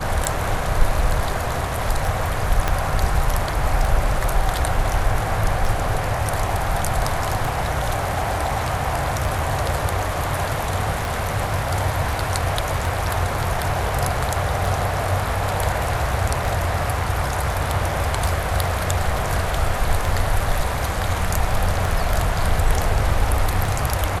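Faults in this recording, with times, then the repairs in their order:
tick 33 1/3 rpm
2.68 s: pop -6 dBFS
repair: de-click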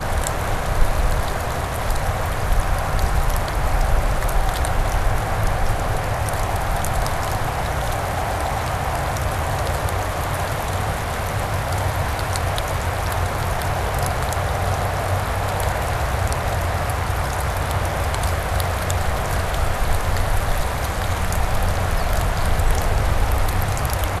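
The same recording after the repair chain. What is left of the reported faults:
2.68 s: pop

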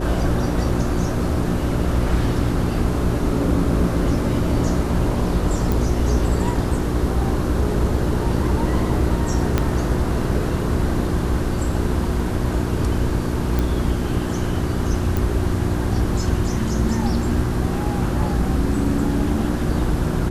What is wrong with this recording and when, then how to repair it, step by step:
hum 60 Hz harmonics 6 -25 dBFS
5.72 s: pop
9.58 s: pop -5 dBFS
13.59 s: pop
15.17 s: pop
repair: de-click; de-hum 60 Hz, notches 6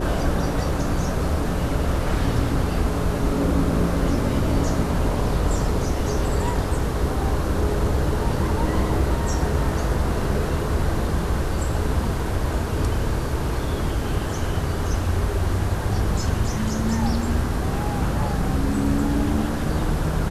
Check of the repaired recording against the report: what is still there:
9.58 s: pop

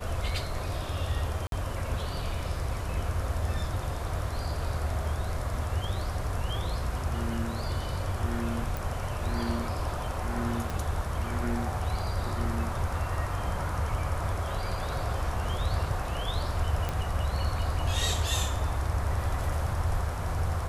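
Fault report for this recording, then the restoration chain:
1.47–1.52 s: dropout 52 ms
8.77 s: pop
10.70 s: pop
16.89 s: pop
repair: de-click; interpolate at 1.47 s, 52 ms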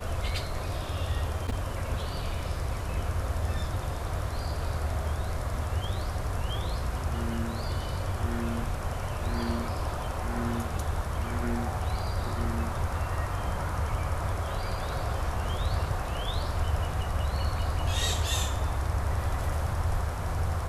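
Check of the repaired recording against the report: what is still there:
10.70 s: pop

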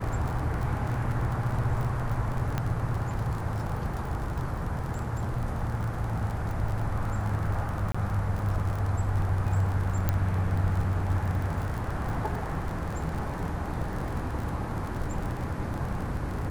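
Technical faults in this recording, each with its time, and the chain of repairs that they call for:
crackle 39 per s -32 dBFS
2.58 s: pop -15 dBFS
7.92–7.95 s: dropout 25 ms
10.09 s: pop -12 dBFS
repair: de-click; interpolate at 7.92 s, 25 ms

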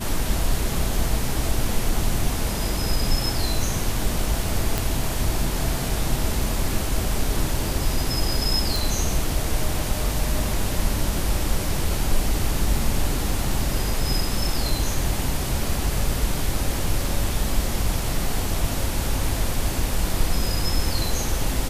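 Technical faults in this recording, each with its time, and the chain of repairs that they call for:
4.78 s: pop
8.76 s: pop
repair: de-click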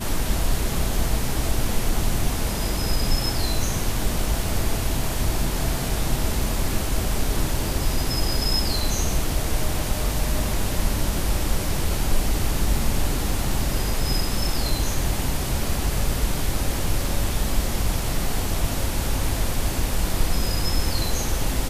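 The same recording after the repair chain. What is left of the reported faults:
nothing left

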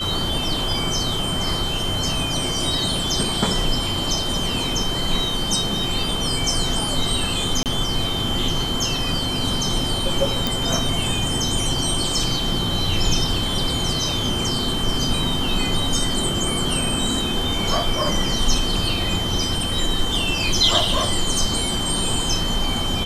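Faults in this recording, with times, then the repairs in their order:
whine 3.1 kHz -25 dBFS
7.63–7.66 s: dropout 28 ms
10.47 s: pop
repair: de-click; band-stop 3.1 kHz, Q 30; interpolate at 7.63 s, 28 ms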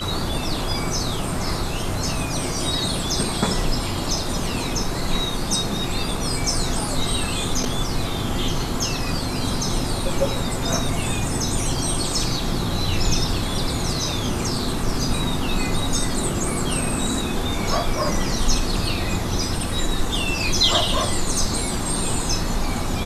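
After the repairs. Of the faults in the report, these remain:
nothing left

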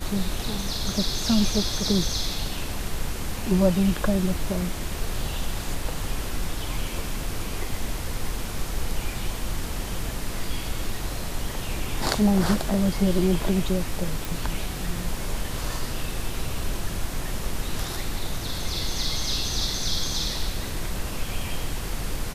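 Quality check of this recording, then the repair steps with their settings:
14.25 s: pop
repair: de-click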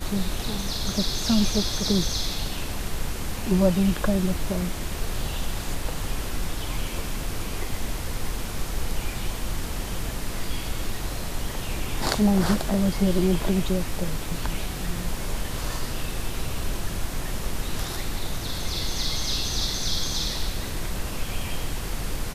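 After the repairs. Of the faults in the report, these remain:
nothing left

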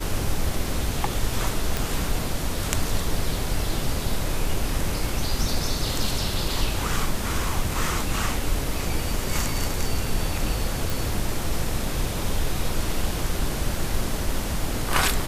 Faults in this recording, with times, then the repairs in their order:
1.77 s: pop
10.90 s: pop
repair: de-click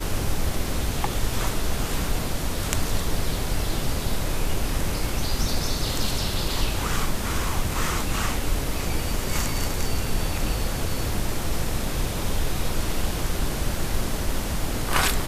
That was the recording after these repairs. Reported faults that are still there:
nothing left

